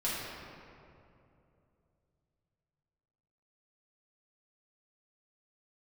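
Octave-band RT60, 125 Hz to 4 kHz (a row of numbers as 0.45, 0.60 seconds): 4.0, 3.2, 3.0, 2.4, 2.0, 1.4 seconds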